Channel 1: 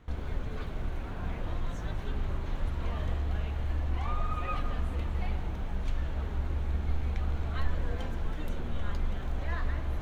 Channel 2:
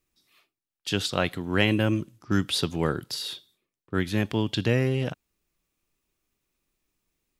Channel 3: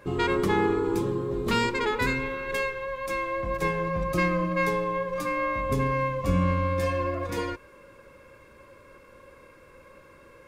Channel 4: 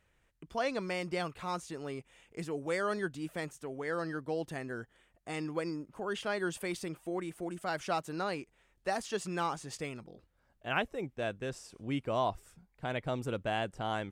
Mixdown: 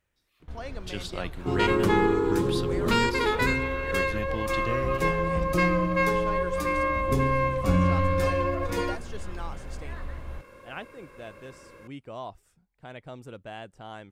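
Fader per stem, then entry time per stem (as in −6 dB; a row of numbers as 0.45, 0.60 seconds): −5.5, −9.5, +1.5, −7.0 decibels; 0.40, 0.00, 1.40, 0.00 seconds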